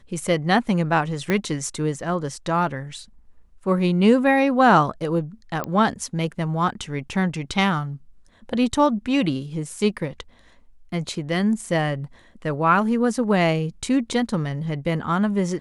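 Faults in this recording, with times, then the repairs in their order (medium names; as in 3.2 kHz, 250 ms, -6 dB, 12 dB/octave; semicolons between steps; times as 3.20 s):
1.30 s: pop -9 dBFS
5.64 s: pop -12 dBFS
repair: de-click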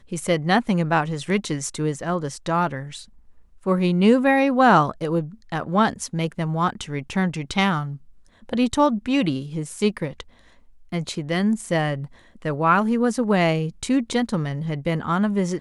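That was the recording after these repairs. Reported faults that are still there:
1.30 s: pop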